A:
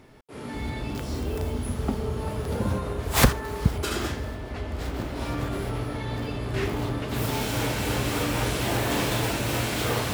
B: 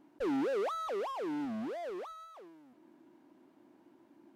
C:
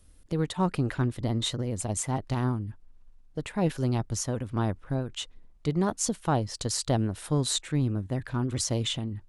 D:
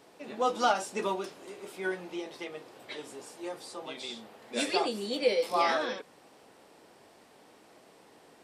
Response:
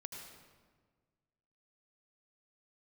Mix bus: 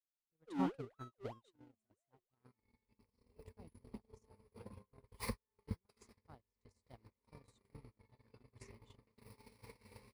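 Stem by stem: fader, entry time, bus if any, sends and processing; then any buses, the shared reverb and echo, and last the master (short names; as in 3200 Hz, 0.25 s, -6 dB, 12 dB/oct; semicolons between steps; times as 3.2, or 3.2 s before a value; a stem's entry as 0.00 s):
-9.5 dB, 2.05 s, bus A, no send, ripple EQ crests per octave 0.9, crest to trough 15 dB
-1.0 dB, 0.25 s, no bus, no send, noise-modulated level, depth 65%
-12.0 dB, 0.00 s, bus A, no send, dry
-16.5 dB, 0.00 s, bus A, no send, rippled Chebyshev low-pass 3400 Hz, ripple 6 dB; band shelf 820 Hz -13 dB 1.1 oct
bus A: 0.0 dB, compressor 6:1, threshold -34 dBFS, peak gain reduction 15 dB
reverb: off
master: gate -33 dBFS, range -51 dB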